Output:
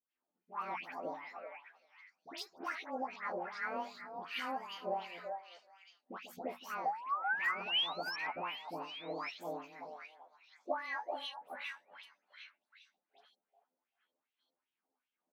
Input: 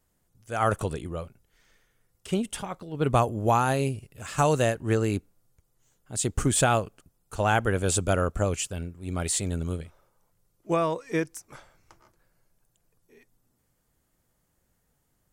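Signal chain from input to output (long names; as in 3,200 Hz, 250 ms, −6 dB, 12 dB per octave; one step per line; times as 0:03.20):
pitch shift by two crossfaded delay taps +9.5 semitones
mains-hum notches 60/120/180/240 Hz
noise gate −57 dBFS, range −18 dB
low shelf with overshoot 150 Hz −13 dB, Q 3
brickwall limiter −15 dBFS, peak gain reduction 7.5 dB
downward compressor 10 to 1, threshold −40 dBFS, peak gain reduction 20 dB
sound drawn into the spectrogram rise, 0:06.83–0:08.04, 750–5,600 Hz −41 dBFS
all-pass dispersion highs, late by 133 ms, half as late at 1,700 Hz
LFO wah 2.6 Hz 610–3,100 Hz, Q 2.4
echo through a band-pass that steps 385 ms, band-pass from 690 Hz, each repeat 1.4 octaves, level −4.5 dB
level +11 dB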